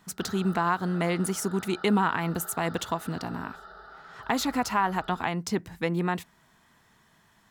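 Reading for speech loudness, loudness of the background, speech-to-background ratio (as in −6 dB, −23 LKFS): −28.5 LKFS, −45.5 LKFS, 17.0 dB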